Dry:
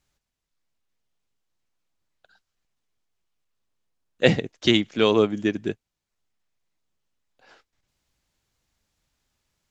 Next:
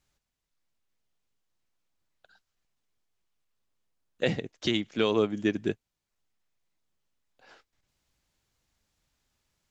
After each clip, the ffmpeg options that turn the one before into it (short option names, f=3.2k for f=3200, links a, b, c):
-af "alimiter=limit=-11.5dB:level=0:latency=1:release=451,volume=-1.5dB"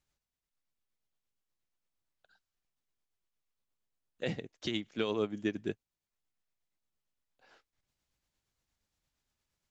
-af "tremolo=f=8.6:d=0.35,volume=-6dB"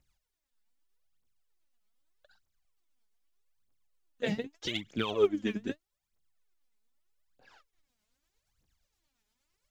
-af "aphaser=in_gain=1:out_gain=1:delay=4.9:decay=0.76:speed=0.81:type=triangular"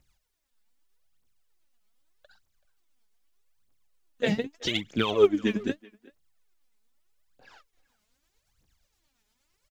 -filter_complex "[0:a]asplit=2[a][b];[b]adelay=380,highpass=300,lowpass=3.4k,asoftclip=type=hard:threshold=-22dB,volume=-22dB[c];[a][c]amix=inputs=2:normalize=0,volume=6dB"